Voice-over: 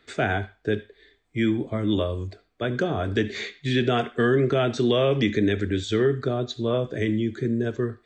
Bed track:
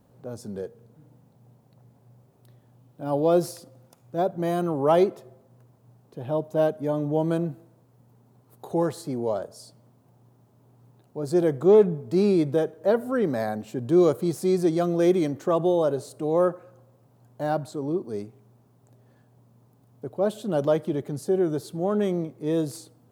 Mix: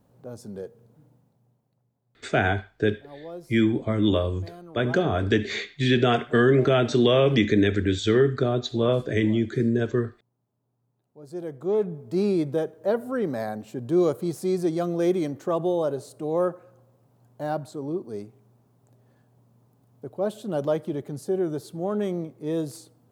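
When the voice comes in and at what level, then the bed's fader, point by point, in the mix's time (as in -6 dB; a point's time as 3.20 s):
2.15 s, +2.0 dB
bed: 1.01 s -2.5 dB
1.92 s -18.5 dB
10.94 s -18.5 dB
12.19 s -2.5 dB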